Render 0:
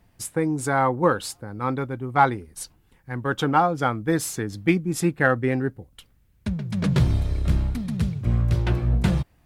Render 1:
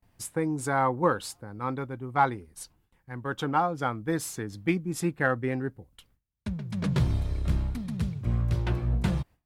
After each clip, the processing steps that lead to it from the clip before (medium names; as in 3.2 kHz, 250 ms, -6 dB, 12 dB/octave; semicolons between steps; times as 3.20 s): peaking EQ 1 kHz +2.5 dB 0.45 oct; gain riding within 3 dB 2 s; gate with hold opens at -50 dBFS; trim -6 dB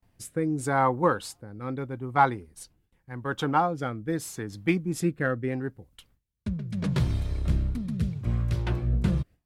rotary cabinet horn 0.8 Hz; trim +2.5 dB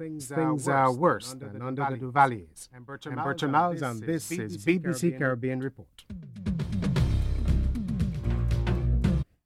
reverse echo 365 ms -10 dB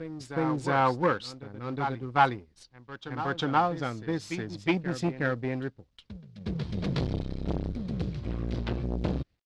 companding laws mixed up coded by A; resonant low-pass 4.5 kHz, resonance Q 1.8; transformer saturation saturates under 970 Hz